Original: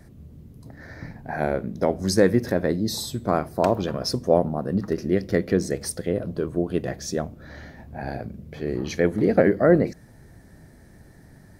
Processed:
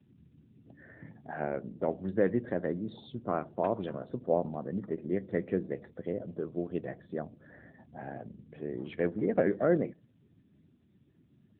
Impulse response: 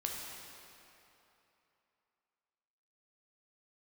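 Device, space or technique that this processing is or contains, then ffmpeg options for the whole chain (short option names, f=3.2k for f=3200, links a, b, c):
mobile call with aggressive noise cancelling: -af "highpass=f=130:p=1,afftdn=nr=30:nf=-45,volume=-8.5dB" -ar 8000 -c:a libopencore_amrnb -b:a 10200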